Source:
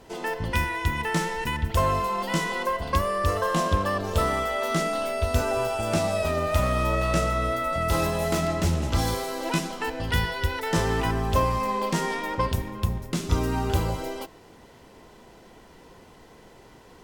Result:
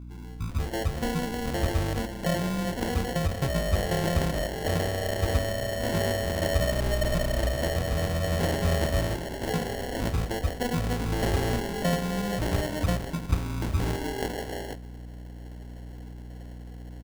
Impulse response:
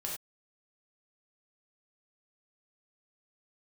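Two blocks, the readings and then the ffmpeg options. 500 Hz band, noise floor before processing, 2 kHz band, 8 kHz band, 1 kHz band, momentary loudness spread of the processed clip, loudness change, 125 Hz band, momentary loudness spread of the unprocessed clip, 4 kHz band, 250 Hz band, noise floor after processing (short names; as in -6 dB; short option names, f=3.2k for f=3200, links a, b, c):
-2.0 dB, -51 dBFS, -4.0 dB, -2.0 dB, -8.0 dB, 17 LU, -2.5 dB, 0.0 dB, 5 LU, -1.0 dB, 0.0 dB, -41 dBFS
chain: -filter_complex "[0:a]acrossover=split=270[a][b];[b]adelay=490[c];[a][c]amix=inputs=2:normalize=0,acrusher=samples=36:mix=1:aa=0.000001,aeval=exprs='val(0)+0.0126*(sin(2*PI*60*n/s)+sin(2*PI*2*60*n/s)/2+sin(2*PI*3*60*n/s)/3+sin(2*PI*4*60*n/s)/4+sin(2*PI*5*60*n/s)/5)':c=same,volume=-1.5dB"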